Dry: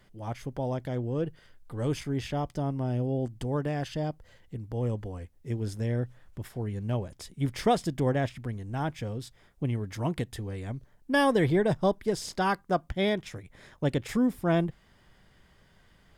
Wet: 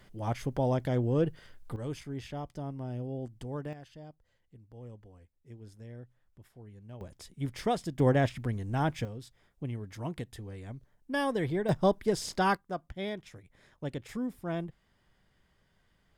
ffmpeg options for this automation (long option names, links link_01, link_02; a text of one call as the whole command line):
ffmpeg -i in.wav -af "asetnsamples=nb_out_samples=441:pad=0,asendcmd='1.76 volume volume -8dB;3.73 volume volume -17dB;7.01 volume volume -5.5dB;8 volume volume 2dB;9.05 volume volume -7dB;11.69 volume volume 0dB;12.57 volume volume -9.5dB',volume=3dB" out.wav